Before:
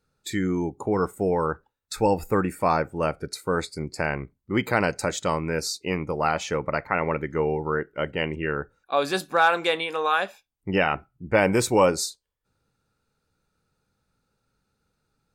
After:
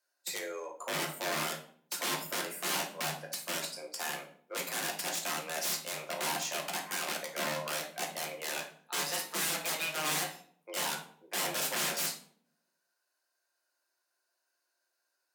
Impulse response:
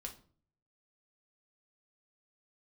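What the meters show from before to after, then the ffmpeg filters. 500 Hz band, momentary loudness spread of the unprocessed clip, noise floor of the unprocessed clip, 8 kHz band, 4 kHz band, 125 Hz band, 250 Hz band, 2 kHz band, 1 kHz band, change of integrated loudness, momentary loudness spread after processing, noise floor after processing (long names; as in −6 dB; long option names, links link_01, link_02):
−16.0 dB, 9 LU, −78 dBFS, +1.5 dB, −1.0 dB, −18.5 dB, −18.0 dB, −8.5 dB, −12.5 dB, −9.0 dB, 8 LU, −82 dBFS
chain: -filter_complex "[0:a]highpass=540,asplit=2[link_01][link_02];[link_02]acrusher=bits=3:mix=0:aa=0.5,volume=-8dB[link_03];[link_01][link_03]amix=inputs=2:normalize=0,aexciter=amount=1.7:drive=7.1:freq=4600,aeval=exprs='(mod(10*val(0)+1,2)-1)/10':channel_layout=same,afreqshift=150[link_04];[1:a]atrim=start_sample=2205,asetrate=32193,aresample=44100[link_05];[link_04][link_05]afir=irnorm=-1:irlink=0,volume=-3.5dB"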